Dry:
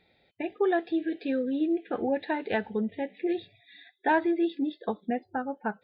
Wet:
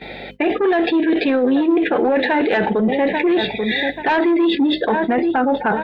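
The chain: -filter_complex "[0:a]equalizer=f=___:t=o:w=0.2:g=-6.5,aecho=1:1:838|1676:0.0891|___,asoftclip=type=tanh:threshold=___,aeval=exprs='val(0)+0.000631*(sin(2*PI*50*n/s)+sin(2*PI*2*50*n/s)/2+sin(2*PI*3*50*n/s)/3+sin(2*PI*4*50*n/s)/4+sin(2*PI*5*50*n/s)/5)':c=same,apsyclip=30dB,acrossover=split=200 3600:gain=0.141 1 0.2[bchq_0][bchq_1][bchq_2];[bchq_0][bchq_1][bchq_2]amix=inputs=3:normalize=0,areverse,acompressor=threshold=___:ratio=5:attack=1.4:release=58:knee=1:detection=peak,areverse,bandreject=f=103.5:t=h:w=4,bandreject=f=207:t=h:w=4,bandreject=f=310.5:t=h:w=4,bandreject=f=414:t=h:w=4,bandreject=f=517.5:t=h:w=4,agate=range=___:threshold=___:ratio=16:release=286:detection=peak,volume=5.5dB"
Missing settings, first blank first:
1.2k, 0.016, -17dB, -21dB, -15dB, -41dB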